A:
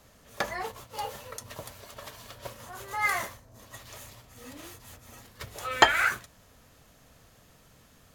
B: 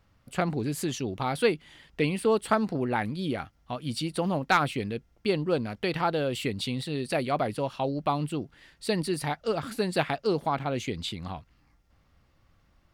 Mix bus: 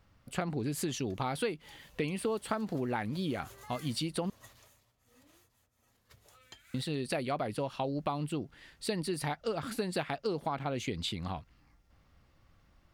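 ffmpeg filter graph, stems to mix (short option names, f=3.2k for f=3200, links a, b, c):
-filter_complex "[0:a]acrossover=split=250|3000[a][b][c];[b]acompressor=threshold=-45dB:ratio=3[d];[a][d][c]amix=inputs=3:normalize=0,tremolo=f=1.1:d=0.6,adelay=700,volume=-7.5dB,afade=t=in:st=1.79:d=0.28:silence=0.334965,afade=t=out:st=4.47:d=0.49:silence=0.316228[e];[1:a]volume=-0.5dB,asplit=3[f][g][h];[f]atrim=end=4.3,asetpts=PTS-STARTPTS,afade=t=out:st=4.296:d=0.004:c=hsin[i];[g]atrim=start=4.3:end=6.74,asetpts=PTS-STARTPTS,volume=0[j];[h]atrim=start=6.74,asetpts=PTS-STARTPTS,afade=t=in:d=0.004:c=hsin[k];[i][j][k]concat=n=3:v=0:a=1[l];[e][l]amix=inputs=2:normalize=0,acompressor=threshold=-30dB:ratio=5"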